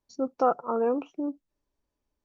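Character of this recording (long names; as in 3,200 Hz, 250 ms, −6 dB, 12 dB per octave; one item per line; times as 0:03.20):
background noise floor −84 dBFS
spectral slope −1.0 dB per octave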